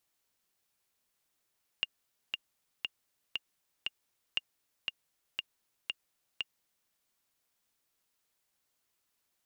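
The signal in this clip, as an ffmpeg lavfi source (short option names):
-f lavfi -i "aevalsrc='pow(10,(-16.5-3.5*gte(mod(t,5*60/118),60/118))/20)*sin(2*PI*2820*mod(t,60/118))*exp(-6.91*mod(t,60/118)/0.03)':d=5.08:s=44100"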